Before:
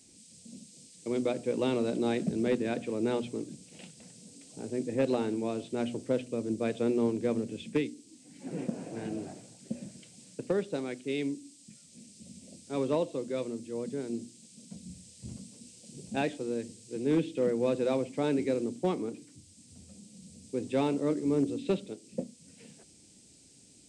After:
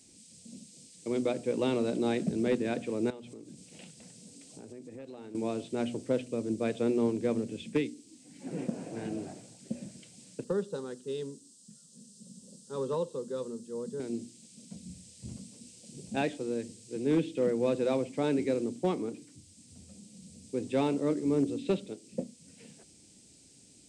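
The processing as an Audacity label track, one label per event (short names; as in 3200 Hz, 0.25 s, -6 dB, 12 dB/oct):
3.100000	5.350000	compressor 5:1, threshold -44 dBFS
10.440000	14.000000	fixed phaser centre 450 Hz, stages 8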